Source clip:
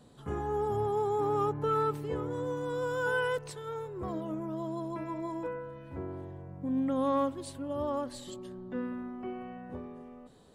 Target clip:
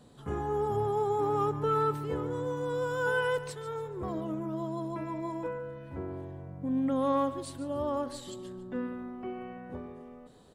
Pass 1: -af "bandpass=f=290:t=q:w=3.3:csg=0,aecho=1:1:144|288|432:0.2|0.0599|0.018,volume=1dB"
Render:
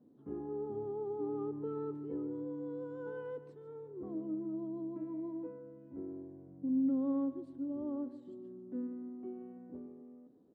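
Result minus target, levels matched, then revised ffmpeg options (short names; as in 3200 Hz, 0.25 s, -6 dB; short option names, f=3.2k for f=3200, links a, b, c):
250 Hz band +5.5 dB
-af "aecho=1:1:144|288|432:0.2|0.0599|0.018,volume=1dB"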